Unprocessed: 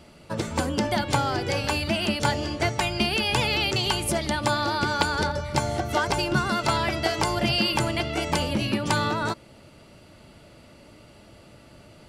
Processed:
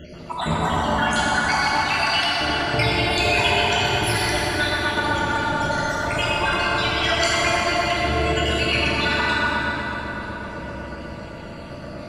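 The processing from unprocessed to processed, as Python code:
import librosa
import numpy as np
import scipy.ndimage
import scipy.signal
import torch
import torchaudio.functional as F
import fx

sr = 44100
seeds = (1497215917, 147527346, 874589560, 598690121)

p1 = fx.spec_dropout(x, sr, seeds[0], share_pct=69)
p2 = fx.peak_eq(p1, sr, hz=14000.0, db=-12.5, octaves=1.2)
p3 = fx.over_compress(p2, sr, threshold_db=-34.0, ratio=-0.5)
p4 = p3 + fx.echo_filtered(p3, sr, ms=124, feedback_pct=81, hz=2800.0, wet_db=-4.5, dry=0)
p5 = fx.rev_plate(p4, sr, seeds[1], rt60_s=4.8, hf_ratio=0.6, predelay_ms=0, drr_db=-6.5)
y = p5 * 10.0 ** (5.5 / 20.0)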